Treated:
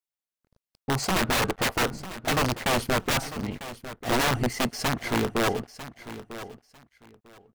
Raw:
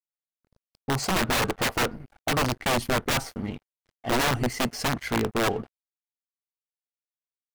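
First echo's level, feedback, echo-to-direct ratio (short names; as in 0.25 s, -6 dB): -14.0 dB, 20%, -14.0 dB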